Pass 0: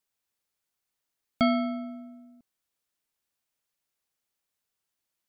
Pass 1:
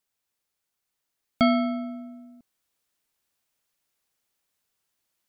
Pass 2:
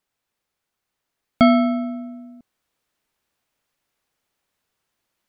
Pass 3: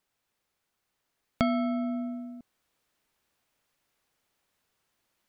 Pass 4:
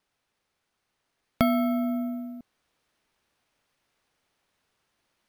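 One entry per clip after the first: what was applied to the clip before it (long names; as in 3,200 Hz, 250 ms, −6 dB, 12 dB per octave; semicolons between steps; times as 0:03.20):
speech leveller 2 s; level +4 dB
high-shelf EQ 4,000 Hz −10 dB; level +7 dB
downward compressor 3 to 1, threshold −28 dBFS, peak gain reduction 14 dB
bad sample-rate conversion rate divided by 3×, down filtered, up hold; level +3.5 dB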